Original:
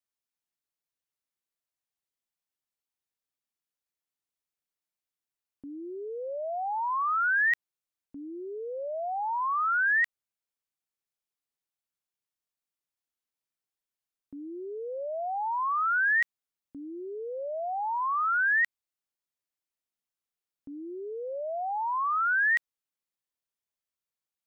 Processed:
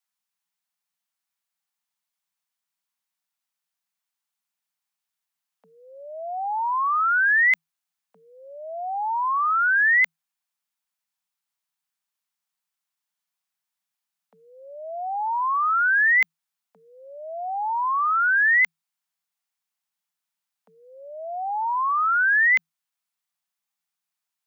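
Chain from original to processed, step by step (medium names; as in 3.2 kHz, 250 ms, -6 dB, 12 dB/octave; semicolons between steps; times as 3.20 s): frequency shift +160 Hz; Chebyshev band-stop 170–800 Hz, order 2; trim +7 dB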